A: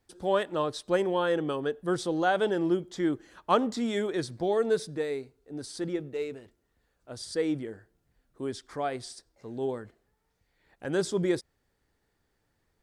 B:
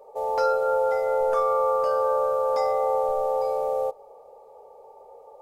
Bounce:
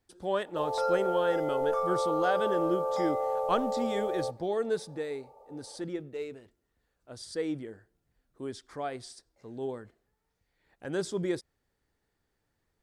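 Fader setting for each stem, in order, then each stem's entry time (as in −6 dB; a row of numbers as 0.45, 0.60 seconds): −4.0, −7.0 decibels; 0.00, 0.40 seconds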